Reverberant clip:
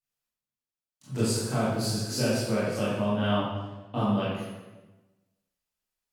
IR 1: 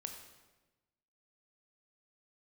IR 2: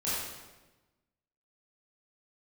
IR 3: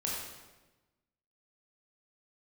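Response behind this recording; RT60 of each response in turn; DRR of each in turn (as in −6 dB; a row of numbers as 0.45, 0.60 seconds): 2; 1.1, 1.1, 1.1 seconds; 4.5, −11.0, −4.5 decibels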